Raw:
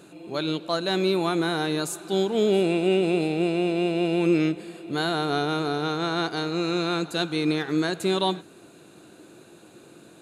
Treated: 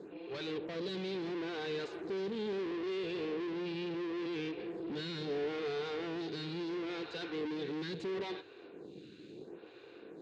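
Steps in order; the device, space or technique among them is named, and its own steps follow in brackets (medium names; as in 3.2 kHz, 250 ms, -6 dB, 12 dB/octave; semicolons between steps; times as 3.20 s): vibe pedal into a guitar amplifier (lamp-driven phase shifter 0.74 Hz; valve stage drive 42 dB, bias 0.7; cabinet simulation 100–4500 Hz, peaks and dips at 440 Hz +9 dB, 640 Hz -8 dB, 900 Hz -4 dB, 1.3 kHz -7 dB); trim +4 dB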